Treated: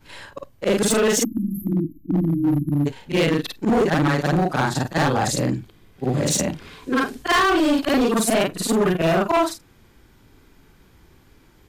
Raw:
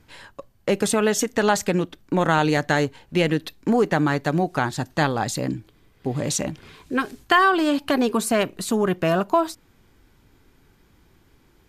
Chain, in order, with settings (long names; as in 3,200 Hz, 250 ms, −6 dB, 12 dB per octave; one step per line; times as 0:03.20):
every overlapping window played backwards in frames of 110 ms
time-frequency box erased 0:01.24–0:02.86, 360–11,000 Hz
gain into a clipping stage and back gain 22 dB
level +7.5 dB